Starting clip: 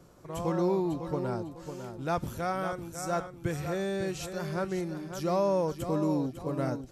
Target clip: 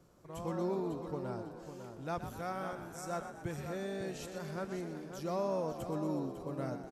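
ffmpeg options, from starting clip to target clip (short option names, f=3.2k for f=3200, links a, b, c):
-filter_complex "[0:a]asplit=8[a][b][c][d][e][f][g][h];[b]adelay=123,afreqshift=55,volume=-10.5dB[i];[c]adelay=246,afreqshift=110,volume=-15.2dB[j];[d]adelay=369,afreqshift=165,volume=-20dB[k];[e]adelay=492,afreqshift=220,volume=-24.7dB[l];[f]adelay=615,afreqshift=275,volume=-29.4dB[m];[g]adelay=738,afreqshift=330,volume=-34.2dB[n];[h]adelay=861,afreqshift=385,volume=-38.9dB[o];[a][i][j][k][l][m][n][o]amix=inputs=8:normalize=0,volume=-8dB"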